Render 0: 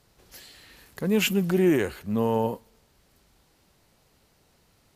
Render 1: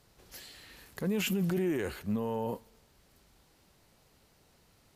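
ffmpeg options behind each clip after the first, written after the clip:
ffmpeg -i in.wav -af "alimiter=limit=-22dB:level=0:latency=1:release=22,volume=-1.5dB" out.wav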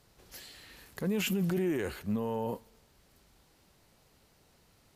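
ffmpeg -i in.wav -af anull out.wav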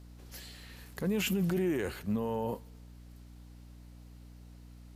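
ffmpeg -i in.wav -af "aeval=exprs='val(0)+0.00316*(sin(2*PI*60*n/s)+sin(2*PI*2*60*n/s)/2+sin(2*PI*3*60*n/s)/3+sin(2*PI*4*60*n/s)/4+sin(2*PI*5*60*n/s)/5)':channel_layout=same" out.wav

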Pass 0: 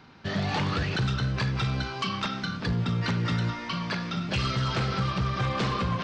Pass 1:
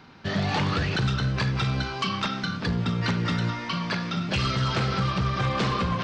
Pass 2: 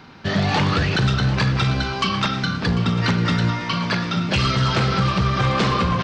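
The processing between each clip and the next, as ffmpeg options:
ffmpeg -i in.wav -af "bandreject=frequency=60:width_type=h:width=6,bandreject=frequency=120:width_type=h:width=6,volume=2.5dB" out.wav
ffmpeg -i in.wav -af "aecho=1:1:745:0.2,volume=6dB" out.wav

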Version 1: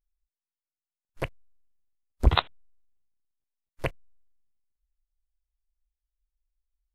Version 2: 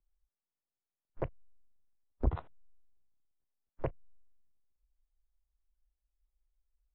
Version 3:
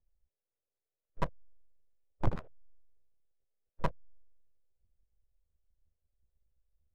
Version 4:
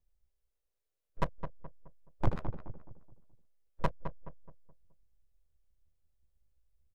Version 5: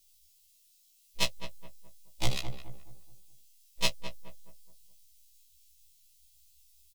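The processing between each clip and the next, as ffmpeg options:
ffmpeg -i in.wav -filter_complex "[0:a]acrossover=split=120[link_01][link_02];[link_02]alimiter=limit=-13dB:level=0:latency=1:release=49[link_03];[link_01][link_03]amix=inputs=2:normalize=0,lowpass=1000,acompressor=threshold=-38dB:ratio=2,volume=2.5dB" out.wav
ffmpeg -i in.wav -af "adynamicsmooth=sensitivity=6.5:basefreq=1400,equalizer=frequency=250:width_type=o:width=1:gain=-10,equalizer=frequency=500:width_type=o:width=1:gain=11,equalizer=frequency=1000:width_type=o:width=1:gain=-11,aeval=exprs='abs(val(0))':channel_layout=same,volume=3.5dB" out.wav
ffmpeg -i in.wav -filter_complex "[0:a]asplit=2[link_01][link_02];[link_02]adelay=212,lowpass=frequency=1300:poles=1,volume=-8dB,asplit=2[link_03][link_04];[link_04]adelay=212,lowpass=frequency=1300:poles=1,volume=0.4,asplit=2[link_05][link_06];[link_06]adelay=212,lowpass=frequency=1300:poles=1,volume=0.4,asplit=2[link_07][link_08];[link_08]adelay=212,lowpass=frequency=1300:poles=1,volume=0.4,asplit=2[link_09][link_10];[link_10]adelay=212,lowpass=frequency=1300:poles=1,volume=0.4[link_11];[link_01][link_03][link_05][link_07][link_09][link_11]amix=inputs=6:normalize=0,volume=1dB" out.wav
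ffmpeg -i in.wav -filter_complex "[0:a]aexciter=amount=8.8:drive=10:freq=2400,asplit=2[link_01][link_02];[link_02]adelay=17,volume=-10dB[link_03];[link_01][link_03]amix=inputs=2:normalize=0,afftfilt=real='re*1.73*eq(mod(b,3),0)':imag='im*1.73*eq(mod(b,3),0)':win_size=2048:overlap=0.75" out.wav

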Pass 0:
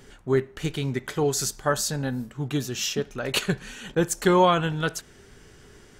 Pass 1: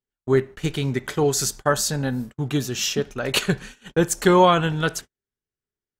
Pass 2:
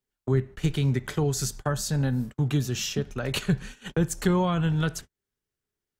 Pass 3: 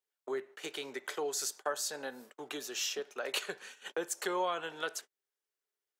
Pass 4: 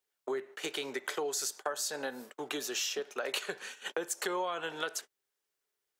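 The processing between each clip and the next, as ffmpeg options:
ffmpeg -i in.wav -af "agate=range=-47dB:threshold=-37dB:ratio=16:detection=peak,volume=3.5dB" out.wav
ffmpeg -i in.wav -filter_complex "[0:a]acrossover=split=170[link_01][link_02];[link_02]acompressor=threshold=-38dB:ratio=2.5[link_03];[link_01][link_03]amix=inputs=2:normalize=0,volume=4dB" out.wav
ffmpeg -i in.wav -af "highpass=frequency=420:width=0.5412,highpass=frequency=420:width=1.3066,volume=-4dB" out.wav
ffmpeg -i in.wav -af "acompressor=threshold=-37dB:ratio=4,volume=5.5dB" out.wav

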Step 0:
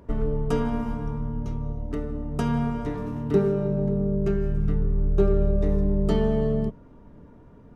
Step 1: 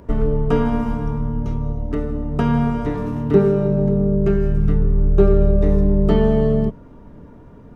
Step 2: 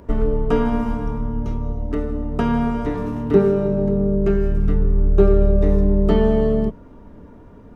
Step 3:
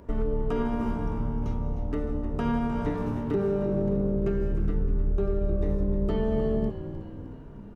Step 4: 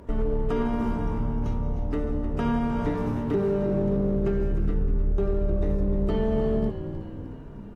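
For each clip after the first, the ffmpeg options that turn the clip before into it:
ffmpeg -i in.wav -filter_complex "[0:a]acrossover=split=3400[link_01][link_02];[link_02]acompressor=threshold=-60dB:ratio=4:attack=1:release=60[link_03];[link_01][link_03]amix=inputs=2:normalize=0,volume=7dB" out.wav
ffmpeg -i in.wav -af "equalizer=frequency=140:width_type=o:width=0.28:gain=-10" out.wav
ffmpeg -i in.wav -filter_complex "[0:a]alimiter=limit=-12.5dB:level=0:latency=1:release=117,asplit=2[link_01][link_02];[link_02]asplit=7[link_03][link_04][link_05][link_06][link_07][link_08][link_09];[link_03]adelay=307,afreqshift=-60,volume=-12dB[link_10];[link_04]adelay=614,afreqshift=-120,volume=-16.2dB[link_11];[link_05]adelay=921,afreqshift=-180,volume=-20.3dB[link_12];[link_06]adelay=1228,afreqshift=-240,volume=-24.5dB[link_13];[link_07]adelay=1535,afreqshift=-300,volume=-28.6dB[link_14];[link_08]adelay=1842,afreqshift=-360,volume=-32.8dB[link_15];[link_09]adelay=2149,afreqshift=-420,volume=-36.9dB[link_16];[link_10][link_11][link_12][link_13][link_14][link_15][link_16]amix=inputs=7:normalize=0[link_17];[link_01][link_17]amix=inputs=2:normalize=0,volume=-5.5dB" out.wav
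ffmpeg -i in.wav -filter_complex "[0:a]asplit=2[link_01][link_02];[link_02]asoftclip=type=hard:threshold=-28dB,volume=-8dB[link_03];[link_01][link_03]amix=inputs=2:normalize=0" -ar 44100 -c:a aac -b:a 64k out.aac

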